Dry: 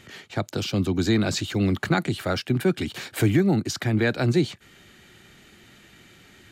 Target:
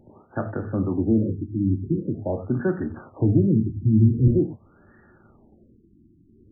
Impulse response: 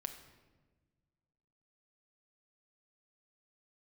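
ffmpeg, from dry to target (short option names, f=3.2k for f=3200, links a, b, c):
-filter_complex "[0:a]asettb=1/sr,asplit=3[a][b][c];[a]atrim=end=3.014[d];[b]atrim=start=3.01:end=4.28,asetpts=PTS-STARTPTS,afade=t=in:d=0.004:c=qsin,afade=t=out:st=1.266:d=0.004:c=qsin,asubboost=boost=12:cutoff=180[e];[c]atrim=start=4.276[f];[d][e]acrossfade=d=0.004:c1=hsin:c2=qsin[g];[g][f]acrossfade=d=0.004:c1=qsin:c2=hsin[h];[1:a]atrim=start_sample=2205,afade=t=out:st=0.24:d=0.01,atrim=end_sample=11025,asetrate=74970,aresample=44100[i];[h][i]afir=irnorm=-1:irlink=0,afftfilt=real='re*lt(b*sr/1024,350*pow(1900/350,0.5+0.5*sin(2*PI*0.45*pts/sr)))':imag='im*lt(b*sr/1024,350*pow(1900/350,0.5+0.5*sin(2*PI*0.45*pts/sr)))':win_size=1024:overlap=0.75,volume=7dB"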